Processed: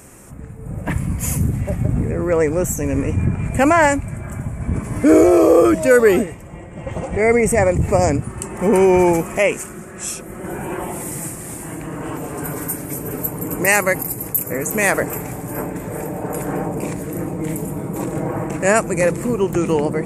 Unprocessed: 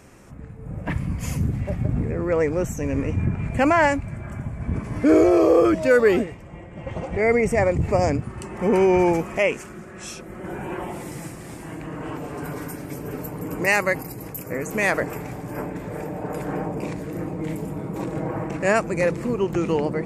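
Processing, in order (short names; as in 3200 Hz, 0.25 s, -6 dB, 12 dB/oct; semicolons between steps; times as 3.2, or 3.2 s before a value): resonant high shelf 6500 Hz +10 dB, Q 1.5; gain +4.5 dB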